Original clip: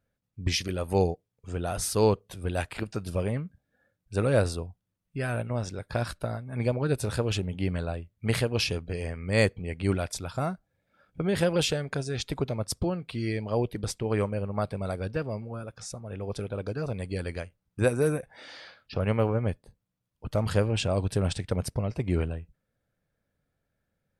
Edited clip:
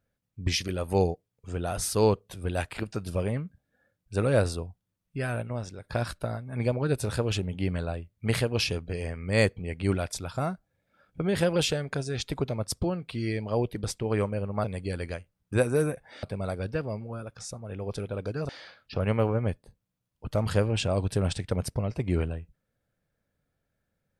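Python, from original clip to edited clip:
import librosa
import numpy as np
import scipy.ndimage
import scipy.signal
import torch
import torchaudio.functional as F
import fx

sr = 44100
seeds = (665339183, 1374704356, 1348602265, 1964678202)

y = fx.edit(x, sr, fx.fade_out_to(start_s=5.23, length_s=0.61, floor_db=-7.0),
    fx.move(start_s=16.9, length_s=1.59, to_s=14.64), tone=tone)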